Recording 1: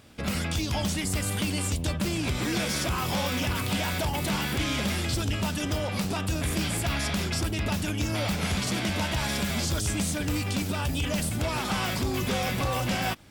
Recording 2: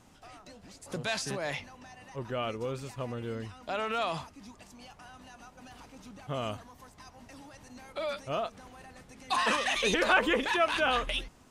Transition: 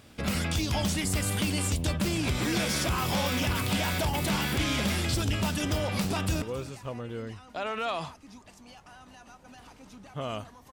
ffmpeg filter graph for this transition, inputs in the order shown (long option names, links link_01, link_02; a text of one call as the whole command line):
ffmpeg -i cue0.wav -i cue1.wav -filter_complex "[0:a]apad=whole_dur=10.72,atrim=end=10.72,atrim=end=6.422[link_01];[1:a]atrim=start=2.548:end=6.85[link_02];[link_01][link_02]acrossfade=duration=0.004:curve1=hsin:curve2=hsin,asplit=2[link_03][link_04];[link_04]afade=type=in:start_time=5.99:duration=0.01,afade=type=out:start_time=6.42:duration=0.01,aecho=0:1:270|540:0.158489|0.0396223[link_05];[link_03][link_05]amix=inputs=2:normalize=0" out.wav